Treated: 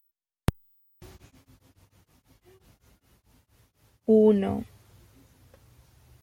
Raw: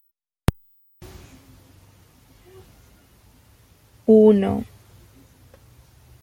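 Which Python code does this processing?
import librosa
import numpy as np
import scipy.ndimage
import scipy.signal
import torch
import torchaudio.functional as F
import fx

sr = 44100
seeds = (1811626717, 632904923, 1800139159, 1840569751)

y = fx.tremolo_abs(x, sr, hz=fx.line((1.1, 8.0), (4.15, 3.3)), at=(1.1, 4.15), fade=0.02)
y = F.gain(torch.from_numpy(y), -6.0).numpy()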